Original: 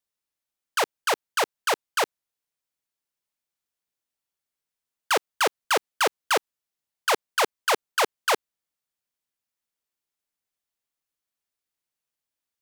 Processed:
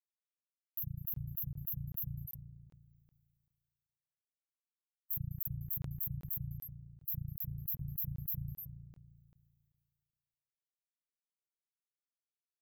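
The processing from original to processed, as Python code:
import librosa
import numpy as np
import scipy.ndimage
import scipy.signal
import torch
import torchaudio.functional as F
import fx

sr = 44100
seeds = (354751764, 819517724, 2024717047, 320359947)

p1 = fx.bin_expand(x, sr, power=1.5)
p2 = fx.brickwall_bandstop(p1, sr, low_hz=160.0, high_hz=12000.0)
p3 = p2 + fx.echo_stepped(p2, sr, ms=101, hz=1300.0, octaves=1.4, feedback_pct=70, wet_db=-12, dry=0)
p4 = fx.dereverb_blind(p3, sr, rt60_s=0.65)
p5 = fx.rev_spring(p4, sr, rt60_s=2.7, pass_ms=(35,), chirp_ms=50, drr_db=18.5)
p6 = fx.noise_reduce_blind(p5, sr, reduce_db=7)
p7 = fx.rider(p6, sr, range_db=10, speed_s=0.5)
p8 = p6 + (p7 * 10.0 ** (-1.0 / 20.0))
p9 = fx.buffer_crackle(p8, sr, first_s=0.75, period_s=0.39, block=1024, kind='zero')
p10 = fx.sustainer(p9, sr, db_per_s=31.0)
y = p10 * 10.0 ** (-1.0 / 20.0)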